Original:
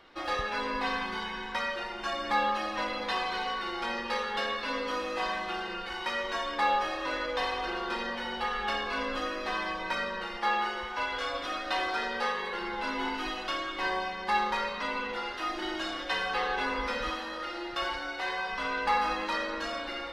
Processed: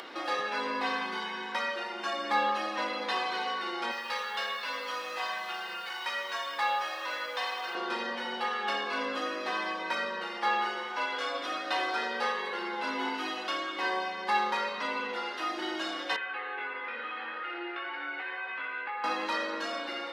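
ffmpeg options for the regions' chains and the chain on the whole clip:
ffmpeg -i in.wav -filter_complex "[0:a]asettb=1/sr,asplit=3[link_01][link_02][link_03];[link_01]atrim=end=3.914[link_04];[link_02]atrim=start=3.91:end=7.75,asetpts=PTS-STARTPTS,afade=type=in:duration=0.004:curve=qsin,afade=type=out:start_time=3.836:duration=0.004:curve=qsin,equalizer=frequency=290:width_type=o:width=1.6:gain=-15,acrusher=bits=8:mix=0:aa=0.5,highpass=43[link_05];[link_03]atrim=start=7.746[link_06];[link_04][link_05]acrossfade=duration=0.004:curve1=hsin:curve2=qsin[link_07];[link_07][link_06]acrossfade=duration=0.004:curve1=qsin:curve2=hsin,asettb=1/sr,asplit=3[link_08][link_09][link_10];[link_08]atrim=end=16.164[link_11];[link_09]atrim=start=16.16:end=19.04,asetpts=PTS-STARTPTS,afade=type=in:duration=0.004:curve=qsin,afade=type=out:start_time=2.876:duration=0.004:curve=qsin,acompressor=threshold=-33dB:ratio=6:attack=3.2:release=140:knee=1:detection=peak,highpass=370,equalizer=frequency=600:width_type=q:width=4:gain=-8,equalizer=frequency=1000:width_type=q:width=4:gain=-8,equalizer=frequency=1600:width_type=q:width=4:gain=3,equalizer=frequency=2300:width_type=q:width=4:gain=4,lowpass=frequency=2800:width=0.5412,lowpass=frequency=2800:width=1.3066,asplit=2[link_12][link_13];[link_13]adelay=17,volume=-5dB[link_14];[link_12][link_14]amix=inputs=2:normalize=0,atrim=end_sample=127008[link_15];[link_10]atrim=start=19.036[link_16];[link_11][link_15]acrossfade=duration=0.004:curve1=hsin:curve2=qsin[link_17];[link_17][link_16]acrossfade=duration=0.004:curve1=qsin:curve2=hsin,highpass=frequency=220:width=0.5412,highpass=frequency=220:width=1.3066,acompressor=mode=upward:threshold=-34dB:ratio=2.5" out.wav

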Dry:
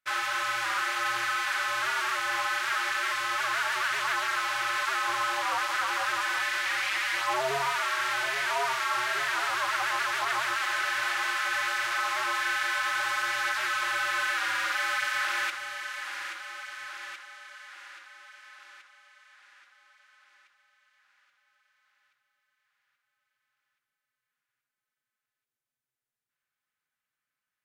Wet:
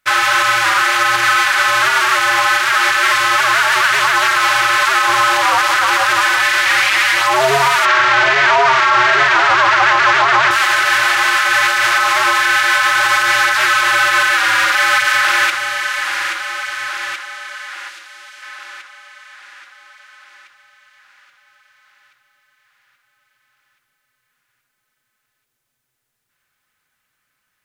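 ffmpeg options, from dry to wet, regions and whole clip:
ffmpeg -i in.wav -filter_complex "[0:a]asettb=1/sr,asplit=3[link_01][link_02][link_03];[link_01]atrim=end=7.854[link_04];[link_02]atrim=start=7.85:end=10.51,asetpts=PTS-STARTPTS,afade=type=in:duration=0.004:curve=qsin,afade=type=out:start_time=2.656:duration=0.004:curve=qsin,lowpass=frequency=6900:width=0.5412,lowpass=frequency=6900:width=1.3066,highshelf=frequency=3600:gain=-10,acontrast=89[link_05];[link_03]atrim=start=10.506[link_06];[link_04][link_05]acrossfade=duration=0.004:curve1=hsin:curve2=qsin[link_07];[link_07][link_06]acrossfade=duration=0.004:curve1=qsin:curve2=hsin,asettb=1/sr,asplit=3[link_08][link_09][link_10];[link_08]atrim=end=17.894[link_11];[link_09]atrim=start=17.89:end=18.42,asetpts=PTS-STARTPTS,afade=type=in:duration=0.004:curve=qsin,afade=type=out:start_time=0.526:duration=0.004:curve=qsin,highpass=frequency=350:poles=1,acrossover=split=480|3000[link_12][link_13][link_14];[link_13]acompressor=threshold=-54dB:ratio=6:attack=3.2:release=140:knee=2.83:detection=peak[link_15];[link_12][link_15][link_14]amix=inputs=3:normalize=0[link_16];[link_10]atrim=start=18.416[link_17];[link_11][link_16]acrossfade=duration=0.004:curve1=hsin:curve2=qsin[link_18];[link_18][link_17]acrossfade=duration=0.004:curve1=qsin:curve2=hsin,lowshelf=frequency=100:gain=6.5,acontrast=80,alimiter=level_in=12.5dB:limit=-1dB:release=50:level=0:latency=1,volume=-2.5dB" out.wav

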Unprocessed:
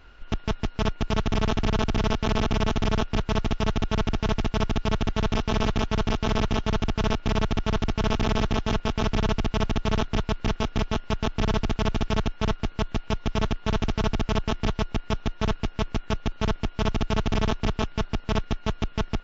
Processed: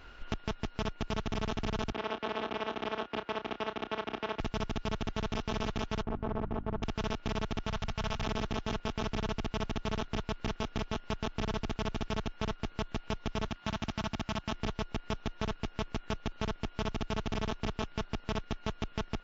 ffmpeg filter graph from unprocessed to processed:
ffmpeg -i in.wav -filter_complex "[0:a]asettb=1/sr,asplit=3[link_01][link_02][link_03];[link_01]atrim=end=1.924[link_04];[link_02]atrim=start=1.92:end=4.4,asetpts=PTS-STARTPTS,afade=type=in:duration=0.004:curve=qsin,afade=type=out:start_time=2.476:duration=0.004:curve=qsin,highpass=43,acrossover=split=260 3800:gain=0.0891 1 0.0708[link_05][link_06][link_07];[link_05][link_06][link_07]amix=inputs=3:normalize=0,asplit=2[link_08][link_09];[link_09]adelay=31,volume=-10.5dB[link_10];[link_08][link_10]amix=inputs=2:normalize=0,atrim=end_sample=109368[link_11];[link_03]atrim=start=4.396[link_12];[link_04][link_11]acrossfade=duration=0.004:curve1=hsin:curve2=qsin[link_13];[link_13][link_12]acrossfade=duration=0.004:curve1=qsin:curve2=hsin,asettb=1/sr,asplit=3[link_14][link_15][link_16];[link_14]atrim=end=6.024[link_17];[link_15]atrim=start=6.02:end=6.83,asetpts=PTS-STARTPTS,afade=type=in:duration=0.004:curve=qsin,afade=type=out:start_time=0.806:duration=0.004:curve=qsin,lowpass=1100,bandreject=frequency=50:width_type=h:width=6,bandreject=frequency=100:width_type=h:width=6,bandreject=frequency=150:width_type=h:width=6,bandreject=frequency=200:width_type=h:width=6,bandreject=frequency=250:width_type=h:width=6,bandreject=frequency=300:width_type=h:width=6[link_18];[link_16]atrim=start=6.826[link_19];[link_17][link_18]acrossfade=duration=0.004:curve1=hsin:curve2=qsin[link_20];[link_20][link_19]acrossfade=duration=0.004:curve1=qsin:curve2=hsin,asettb=1/sr,asplit=3[link_21][link_22][link_23];[link_21]atrim=end=7.684[link_24];[link_22]atrim=start=7.68:end=8.27,asetpts=PTS-STARTPTS,afade=type=in:duration=0.004:curve=qsin,afade=type=out:start_time=0.586:duration=0.004:curve=qsin,equalizer=frequency=330:width_type=o:width=0.64:gain=-15,bandreject=frequency=240:width=6.5[link_25];[link_23]atrim=start=8.266[link_26];[link_24][link_25]acrossfade=duration=0.004:curve1=hsin:curve2=qsin[link_27];[link_27][link_26]acrossfade=duration=0.004:curve1=qsin:curve2=hsin,asettb=1/sr,asplit=3[link_28][link_29][link_30];[link_28]atrim=end=13.484[link_31];[link_29]atrim=start=13.48:end=14.52,asetpts=PTS-STARTPTS,afade=type=in:duration=0.004:curve=qsin,afade=type=out:start_time=1.036:duration=0.004:curve=qsin,highpass=frequency=79:poles=1,equalizer=frequency=440:width=4.1:gain=-13.5[link_32];[link_30]atrim=start=14.516[link_33];[link_31][link_32]acrossfade=duration=0.004:curve1=hsin:curve2=qsin[link_34];[link_34][link_33]acrossfade=duration=0.004:curve1=qsin:curve2=hsin,lowshelf=frequency=130:gain=-4.5,acompressor=threshold=-35dB:ratio=3,volume=1.5dB" out.wav

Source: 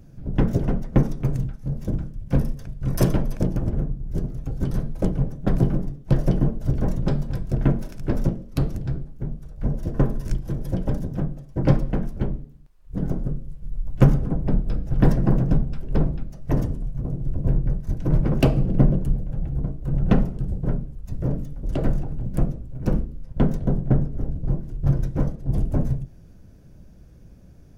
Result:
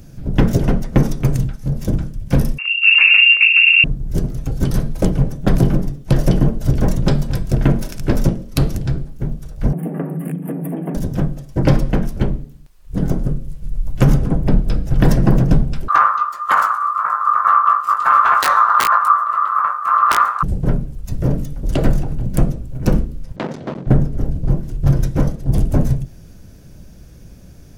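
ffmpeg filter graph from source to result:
ffmpeg -i in.wav -filter_complex "[0:a]asettb=1/sr,asplit=3[link_01][link_02][link_03];[link_01]atrim=end=2.584[link_04];[link_02]atrim=start=2.58:end=3.84,asetpts=PTS-STARTPTS,afade=type=in:duration=0.004:curve=qsin,afade=type=out:start_time=1.256:duration=0.004:curve=qsin,bandreject=frequency=50:width_type=h:width=6,bandreject=frequency=100:width_type=h:width=6,bandreject=frequency=150:width_type=h:width=6,bandreject=frequency=200:width_type=h:width=6,bandreject=frequency=250:width_type=h:width=6,bandreject=frequency=300:width_type=h:width=6,bandreject=frequency=350:width_type=h:width=6,lowpass=frequency=2400:width_type=q:width=0.5098,lowpass=frequency=2400:width_type=q:width=0.6013,lowpass=frequency=2400:width_type=q:width=0.9,lowpass=frequency=2400:width_type=q:width=2.563,afreqshift=-2800[link_05];[link_03]atrim=start=3.836[link_06];[link_04][link_05]acrossfade=duration=0.004:curve1=hsin:curve2=qsin[link_07];[link_07][link_06]acrossfade=duration=0.004:curve1=qsin:curve2=hsin,asettb=1/sr,asplit=3[link_08][link_09][link_10];[link_08]atrim=end=9.734[link_11];[link_09]atrim=start=9.73:end=10.95,asetpts=PTS-STARTPTS,afade=type=in:duration=0.004:curve=qsin,afade=type=out:start_time=1.216:duration=0.004:curve=qsin,acompressor=threshold=-27dB:ratio=8:attack=3.2:release=140:knee=1:detection=peak,afreqshift=140,asuperstop=centerf=5100:order=8:qfactor=0.81[link_12];[link_10]atrim=start=10.946[link_13];[link_11][link_12]acrossfade=duration=0.004:curve1=hsin:curve2=qsin[link_14];[link_14][link_13]acrossfade=duration=0.004:curve1=qsin:curve2=hsin,asettb=1/sr,asplit=3[link_15][link_16][link_17];[link_15]atrim=end=15.884[link_18];[link_16]atrim=start=15.88:end=20.43,asetpts=PTS-STARTPTS,afade=type=in:duration=0.004:curve=qsin,afade=type=out:start_time=4.546:duration=0.004:curve=qsin,aeval=exprs='(mod(2.11*val(0)+1,2)-1)/2.11':channel_layout=same,aeval=exprs='val(0)*sin(2*PI*1200*n/s)':channel_layout=same,asplit=2[link_19][link_20];[link_20]adelay=19,volume=-6dB[link_21];[link_19][link_21]amix=inputs=2:normalize=0,atrim=end_sample=200655[link_22];[link_17]atrim=start=20.426[link_23];[link_18][link_22]acrossfade=duration=0.004:curve1=hsin:curve2=qsin[link_24];[link_24][link_23]acrossfade=duration=0.004:curve1=qsin:curve2=hsin,asettb=1/sr,asplit=3[link_25][link_26][link_27];[link_25]atrim=end=23.364[link_28];[link_26]atrim=start=23.36:end=23.87,asetpts=PTS-STARTPTS,afade=type=in:duration=0.004:curve=qsin,afade=type=out:start_time=0.506:duration=0.004:curve=qsin,asoftclip=type=hard:threshold=-23.5dB,highpass=230,lowpass=4900[link_29];[link_27]atrim=start=23.866[link_30];[link_28][link_29]acrossfade=duration=0.004:curve1=hsin:curve2=qsin[link_31];[link_31][link_30]acrossfade=duration=0.004:curve1=qsin:curve2=hsin,highshelf=frequency=2100:gain=9.5,alimiter=level_in=8dB:limit=-1dB:release=50:level=0:latency=1,volume=-1dB" out.wav

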